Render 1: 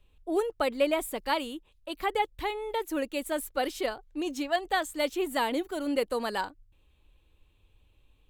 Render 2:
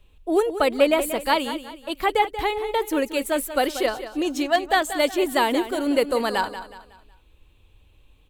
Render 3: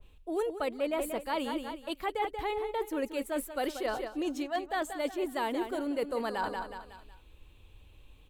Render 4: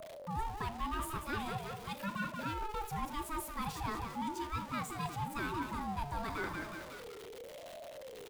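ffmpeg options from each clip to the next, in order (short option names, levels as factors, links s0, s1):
-af "aecho=1:1:184|368|552|736:0.251|0.0955|0.0363|0.0138,volume=2.37"
-af "areverse,acompressor=threshold=0.0282:ratio=4,areverse,adynamicequalizer=threshold=0.00447:dfrequency=2000:dqfactor=0.7:tfrequency=2000:tqfactor=0.7:attack=5:release=100:ratio=0.375:range=3.5:mode=cutabove:tftype=highshelf"
-af "aeval=exprs='val(0)+0.5*0.0141*sgn(val(0))':c=same,aecho=1:1:37|77:0.178|0.133,aeval=exprs='val(0)*sin(2*PI*530*n/s+530*0.2/0.9*sin(2*PI*0.9*n/s))':c=same,volume=0.596"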